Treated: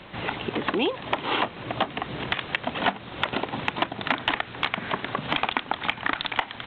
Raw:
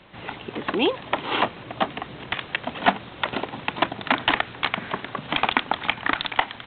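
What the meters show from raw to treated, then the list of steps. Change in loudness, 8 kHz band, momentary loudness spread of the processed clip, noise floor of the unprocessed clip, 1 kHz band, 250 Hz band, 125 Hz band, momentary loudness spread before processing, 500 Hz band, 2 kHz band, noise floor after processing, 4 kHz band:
−2.0 dB, can't be measured, 4 LU, −42 dBFS, −2.5 dB, −1.5 dB, +1.0 dB, 8 LU, −2.0 dB, −2.0 dB, −42 dBFS, −1.5 dB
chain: downward compressor 3 to 1, threshold −31 dBFS, peak gain reduction 14.5 dB
level +6.5 dB

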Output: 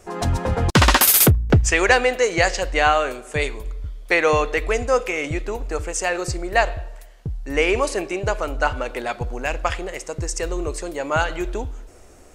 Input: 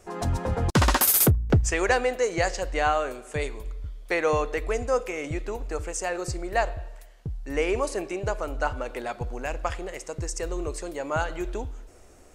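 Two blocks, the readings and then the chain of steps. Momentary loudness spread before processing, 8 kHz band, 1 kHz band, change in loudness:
13 LU, +6.0 dB, +6.0 dB, +6.5 dB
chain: dynamic equaliser 2,800 Hz, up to +6 dB, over −41 dBFS, Q 0.73
level +5 dB

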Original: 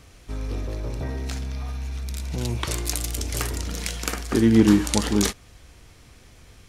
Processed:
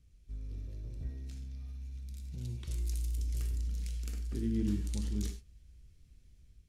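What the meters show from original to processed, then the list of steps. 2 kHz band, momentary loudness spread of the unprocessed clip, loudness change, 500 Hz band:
−26.0 dB, 15 LU, −14.0 dB, −22.0 dB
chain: guitar amp tone stack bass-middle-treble 10-0-1
automatic gain control gain up to 3.5 dB
reverb whose tail is shaped and stops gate 120 ms flat, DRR 7 dB
level −4.5 dB

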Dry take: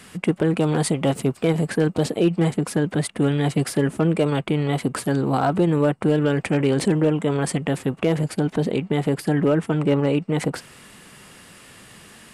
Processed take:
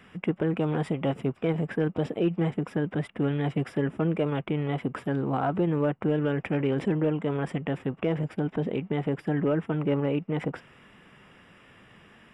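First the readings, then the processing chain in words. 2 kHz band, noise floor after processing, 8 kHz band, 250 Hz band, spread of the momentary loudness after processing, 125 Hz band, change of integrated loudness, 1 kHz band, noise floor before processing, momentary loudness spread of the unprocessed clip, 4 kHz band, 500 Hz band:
−7.0 dB, −56 dBFS, below −25 dB, −6.5 dB, 4 LU, −6.5 dB, −6.5 dB, −6.5 dB, −47 dBFS, 4 LU, −11.5 dB, −6.5 dB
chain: Savitzky-Golay smoothing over 25 samples
level −6.5 dB

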